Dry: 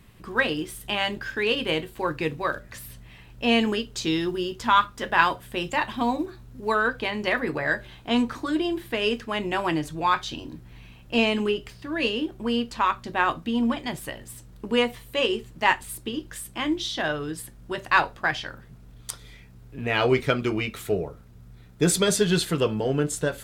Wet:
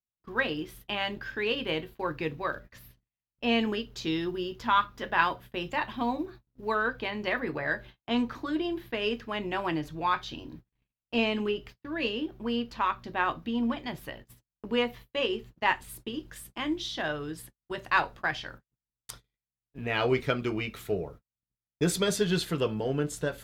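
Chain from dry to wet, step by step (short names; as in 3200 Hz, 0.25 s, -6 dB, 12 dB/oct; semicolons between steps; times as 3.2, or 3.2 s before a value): gate -40 dBFS, range -47 dB; bell 8600 Hz -14.5 dB 0.64 oct, from 15.75 s -5.5 dB; gain -5 dB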